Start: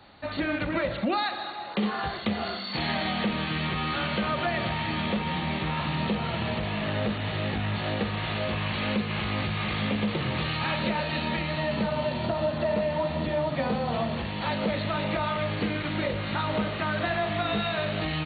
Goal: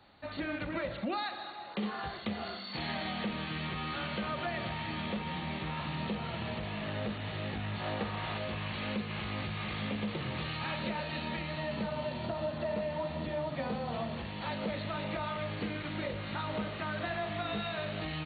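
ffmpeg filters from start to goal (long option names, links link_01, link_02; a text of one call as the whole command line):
ffmpeg -i in.wav -filter_complex "[0:a]asettb=1/sr,asplit=3[link_01][link_02][link_03];[link_01]atrim=end=7.804[link_04];[link_02]atrim=start=7.8:end=8.38,asetpts=PTS-STARTPTS,afade=type=in:duration=0.004:curve=qsin,afade=type=out:start_time=0.576:duration=0.004:curve=qsin,equalizer=frequency=940:width=1.1:gain=5.5[link_05];[link_03]atrim=start=8.376[link_06];[link_04][link_05]acrossfade=duration=0.004:curve1=hsin:curve2=qsin[link_07];[link_07][link_06]acrossfade=duration=0.004:curve1=qsin:curve2=hsin,volume=-8dB" out.wav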